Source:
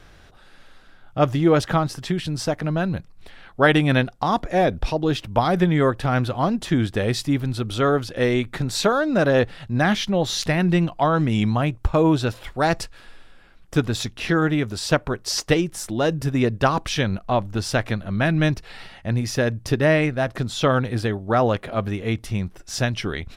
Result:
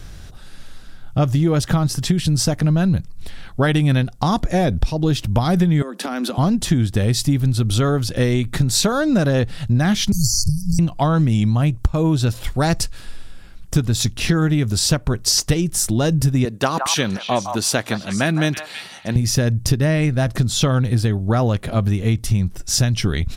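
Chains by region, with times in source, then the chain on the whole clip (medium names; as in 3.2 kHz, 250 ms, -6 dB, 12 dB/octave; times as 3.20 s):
5.82–6.38 s: steep high-pass 190 Hz 96 dB/octave + compression 10:1, threshold -25 dBFS
10.12–10.79 s: brick-wall FIR band-stop 150–4300 Hz + bass shelf 180 Hz +8 dB + three bands compressed up and down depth 100%
16.45–19.16 s: high-pass 290 Hz + band-stop 5.2 kHz + repeats whose band climbs or falls 163 ms, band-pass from 1 kHz, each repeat 1.4 oct, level -5 dB
whole clip: tone controls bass +12 dB, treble +12 dB; compression, threshold -16 dBFS; trim +2.5 dB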